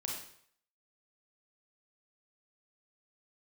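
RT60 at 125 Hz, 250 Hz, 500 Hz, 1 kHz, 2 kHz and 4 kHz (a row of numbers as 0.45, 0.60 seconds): 0.65, 0.55, 0.60, 0.65, 0.60, 0.60 seconds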